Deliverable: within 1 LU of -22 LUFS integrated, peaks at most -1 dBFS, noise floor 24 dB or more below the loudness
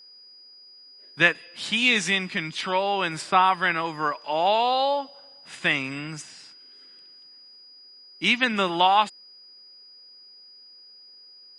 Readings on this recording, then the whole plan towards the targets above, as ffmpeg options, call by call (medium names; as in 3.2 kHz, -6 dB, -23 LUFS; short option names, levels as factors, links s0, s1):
steady tone 4.9 kHz; tone level -47 dBFS; loudness -23.0 LUFS; peak level -2.5 dBFS; loudness target -22.0 LUFS
-> -af "bandreject=f=4900:w=30"
-af "volume=1.12"